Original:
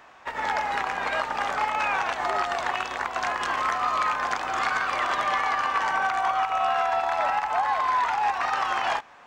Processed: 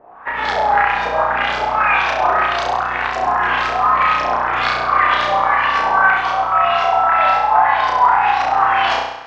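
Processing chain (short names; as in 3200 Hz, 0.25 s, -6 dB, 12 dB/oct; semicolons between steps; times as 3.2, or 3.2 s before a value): LFO low-pass saw up 1.9 Hz 530–5700 Hz; flutter echo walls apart 5.7 m, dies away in 0.82 s; gain +4 dB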